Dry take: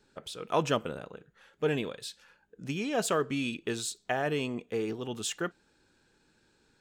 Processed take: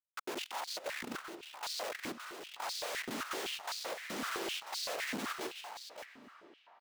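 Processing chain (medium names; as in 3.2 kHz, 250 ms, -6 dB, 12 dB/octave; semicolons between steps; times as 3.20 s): CVSD coder 32 kbps; compression 10:1, threshold -36 dBFS, peak gain reduction 14.5 dB; peak limiter -32.5 dBFS, peak gain reduction 8.5 dB; noise-vocoded speech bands 1; Schmitt trigger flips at -41.5 dBFS; delay 568 ms -9 dB; reverberation RT60 5.2 s, pre-delay 205 ms, DRR 11.5 dB; step-sequenced high-pass 7.8 Hz 240–4400 Hz; trim +2.5 dB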